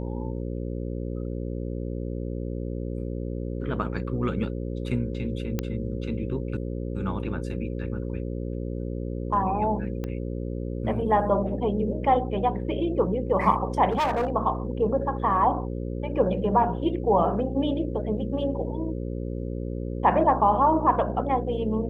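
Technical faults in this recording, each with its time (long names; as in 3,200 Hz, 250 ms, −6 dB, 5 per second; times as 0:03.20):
mains buzz 60 Hz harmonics 9 −31 dBFS
0:05.59: click −13 dBFS
0:10.04: click −20 dBFS
0:13.91–0:14.32: clipping −21 dBFS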